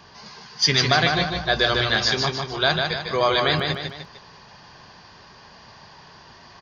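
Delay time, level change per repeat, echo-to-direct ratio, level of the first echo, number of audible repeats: 0.151 s, -6.5 dB, -3.5 dB, -4.5 dB, 3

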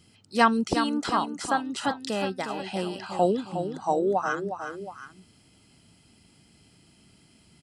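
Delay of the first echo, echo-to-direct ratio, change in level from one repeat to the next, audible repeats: 0.361 s, -7.5 dB, -5.5 dB, 2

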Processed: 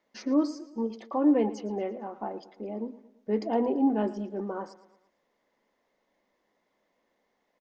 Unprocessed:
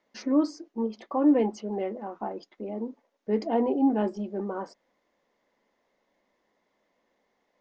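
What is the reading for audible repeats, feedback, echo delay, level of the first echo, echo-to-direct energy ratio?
3, 48%, 0.113 s, -17.0 dB, -16.0 dB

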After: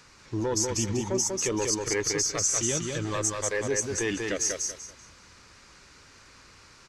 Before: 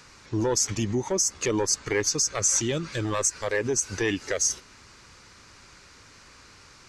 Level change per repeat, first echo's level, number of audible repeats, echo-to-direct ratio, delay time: -11.5 dB, -3.5 dB, 3, -3.0 dB, 0.192 s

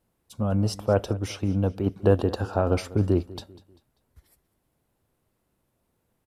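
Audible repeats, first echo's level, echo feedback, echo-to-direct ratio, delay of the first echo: 2, -19.5 dB, 40%, -19.0 dB, 0.196 s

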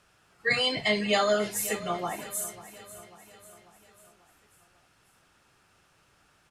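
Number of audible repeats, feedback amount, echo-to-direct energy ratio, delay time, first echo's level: 4, 53%, -14.5 dB, 0.543 s, -16.0 dB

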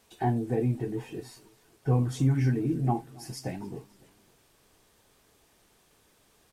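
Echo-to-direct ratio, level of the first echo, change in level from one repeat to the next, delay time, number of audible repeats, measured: -22.0 dB, -23.0 dB, -5.5 dB, 0.279 s, 2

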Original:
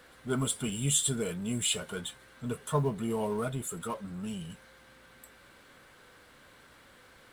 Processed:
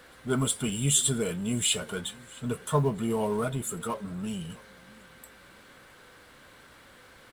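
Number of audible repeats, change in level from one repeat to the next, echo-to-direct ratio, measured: 2, -11.5 dB, -22.5 dB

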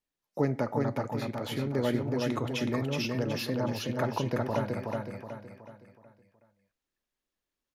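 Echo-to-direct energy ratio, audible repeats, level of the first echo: -2.0 dB, 5, -3.0 dB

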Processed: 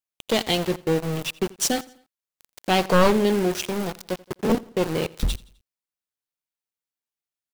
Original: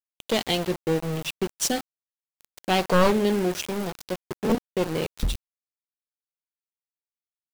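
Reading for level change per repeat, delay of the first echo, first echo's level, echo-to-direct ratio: -6.5 dB, 85 ms, -22.0 dB, -21.0 dB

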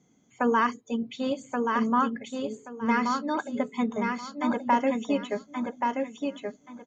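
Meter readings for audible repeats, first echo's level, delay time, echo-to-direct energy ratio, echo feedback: 3, -4.0 dB, 1.128 s, -4.0 dB, 22%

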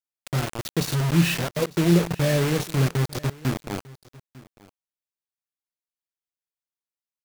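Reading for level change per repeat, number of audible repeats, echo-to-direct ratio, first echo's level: no steady repeat, 1, -21.5 dB, -21.5 dB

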